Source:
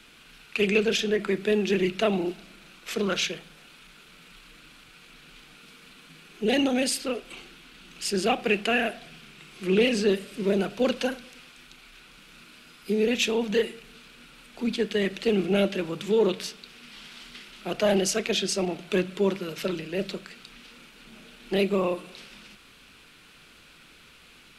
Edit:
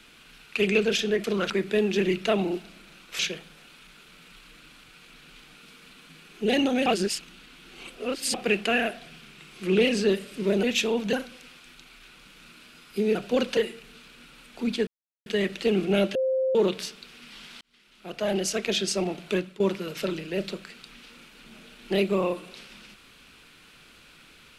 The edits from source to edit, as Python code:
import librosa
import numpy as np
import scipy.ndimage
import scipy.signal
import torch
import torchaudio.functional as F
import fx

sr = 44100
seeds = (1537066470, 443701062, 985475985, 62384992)

y = fx.edit(x, sr, fx.move(start_s=2.93, length_s=0.26, to_s=1.24),
    fx.reverse_span(start_s=6.86, length_s=1.48),
    fx.swap(start_s=10.63, length_s=0.42, other_s=13.07, other_length_s=0.5),
    fx.insert_silence(at_s=14.87, length_s=0.39),
    fx.bleep(start_s=15.76, length_s=0.4, hz=524.0, db=-21.5),
    fx.fade_in_span(start_s=17.22, length_s=1.13),
    fx.fade_out_to(start_s=18.9, length_s=0.31, floor_db=-16.0), tone=tone)